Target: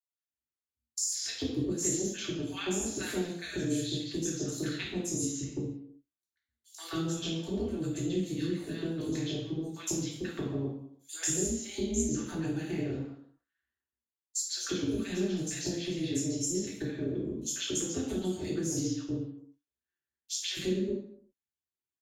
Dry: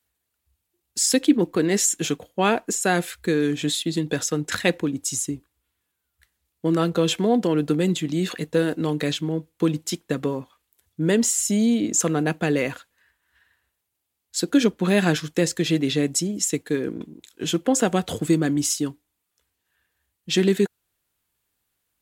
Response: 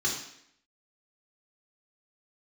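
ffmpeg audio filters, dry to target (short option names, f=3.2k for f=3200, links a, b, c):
-filter_complex "[0:a]agate=range=-27dB:threshold=-40dB:ratio=16:detection=peak,acrossover=split=370|3000[a][b][c];[b]acompressor=threshold=-34dB:ratio=4[d];[a][d][c]amix=inputs=3:normalize=0,tremolo=f=170:d=0.974,acrossover=split=1000|5200[e][f][g];[f]adelay=140[h];[e]adelay=280[i];[i][h][g]amix=inputs=3:normalize=0,acompressor=threshold=-41dB:ratio=4[j];[1:a]atrim=start_sample=2205,afade=t=out:st=0.44:d=0.01,atrim=end_sample=19845[k];[j][k]afir=irnorm=-1:irlink=0"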